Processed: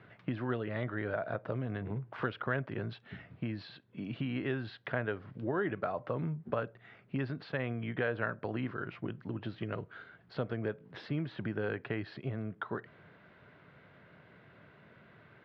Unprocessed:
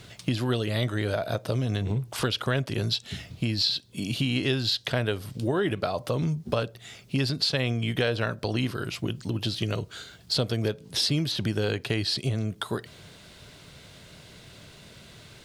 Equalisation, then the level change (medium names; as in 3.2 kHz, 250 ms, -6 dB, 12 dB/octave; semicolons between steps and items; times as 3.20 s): high-pass 120 Hz; four-pole ladder low-pass 2.1 kHz, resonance 35%; 0.0 dB